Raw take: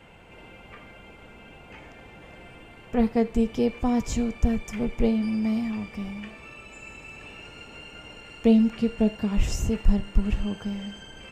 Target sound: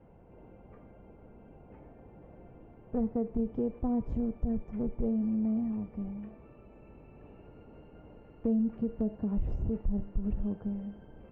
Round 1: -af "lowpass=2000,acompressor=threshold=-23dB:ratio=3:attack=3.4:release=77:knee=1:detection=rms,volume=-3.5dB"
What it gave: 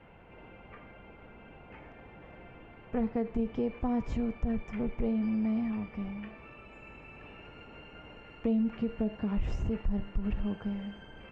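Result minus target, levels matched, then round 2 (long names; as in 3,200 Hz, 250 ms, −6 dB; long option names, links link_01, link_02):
2,000 Hz band +16.5 dB
-af "lowpass=630,acompressor=threshold=-23dB:ratio=3:attack=3.4:release=77:knee=1:detection=rms,volume=-3.5dB"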